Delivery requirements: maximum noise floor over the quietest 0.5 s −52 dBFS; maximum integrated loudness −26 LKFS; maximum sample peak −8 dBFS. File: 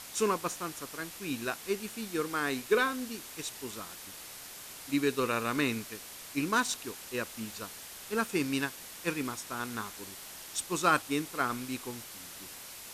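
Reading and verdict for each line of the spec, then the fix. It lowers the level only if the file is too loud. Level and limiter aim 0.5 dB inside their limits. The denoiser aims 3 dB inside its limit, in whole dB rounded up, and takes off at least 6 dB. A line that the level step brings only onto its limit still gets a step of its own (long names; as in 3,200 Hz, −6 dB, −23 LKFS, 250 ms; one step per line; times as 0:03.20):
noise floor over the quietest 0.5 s −46 dBFS: out of spec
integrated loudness −34.0 LKFS: in spec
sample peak −12.5 dBFS: in spec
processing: broadband denoise 9 dB, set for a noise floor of −46 dBFS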